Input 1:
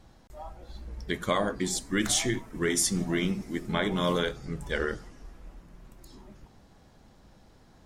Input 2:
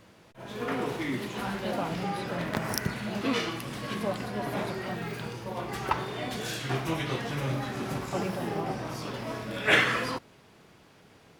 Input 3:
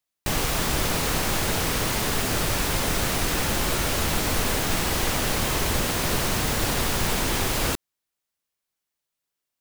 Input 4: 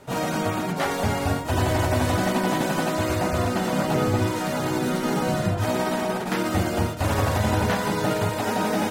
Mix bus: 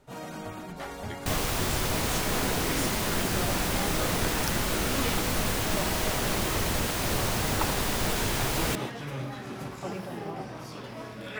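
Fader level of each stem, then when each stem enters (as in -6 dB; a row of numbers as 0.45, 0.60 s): -12.0, -4.5, -4.5, -13.5 dB; 0.00, 1.70, 1.00, 0.00 s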